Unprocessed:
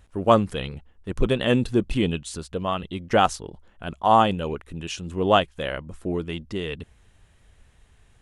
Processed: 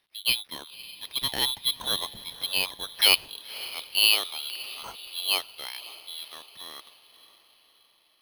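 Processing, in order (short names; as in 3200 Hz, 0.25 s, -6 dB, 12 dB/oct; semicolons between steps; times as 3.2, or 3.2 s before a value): Doppler pass-by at 2.73, 21 m/s, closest 24 m; HPF 260 Hz 6 dB/oct; diffused feedback echo 0.552 s, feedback 49%, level -16 dB; inverted band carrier 3700 Hz; careless resampling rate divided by 6×, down filtered, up hold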